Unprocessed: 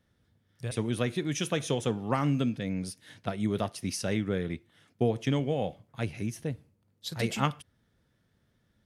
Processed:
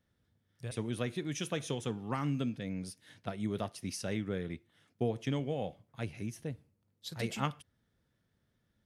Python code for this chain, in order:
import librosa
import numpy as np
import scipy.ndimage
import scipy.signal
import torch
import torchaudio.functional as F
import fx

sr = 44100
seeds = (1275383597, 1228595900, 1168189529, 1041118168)

y = fx.peak_eq(x, sr, hz=600.0, db=-6.0, octaves=0.58, at=(1.71, 2.4))
y = y * librosa.db_to_amplitude(-6.0)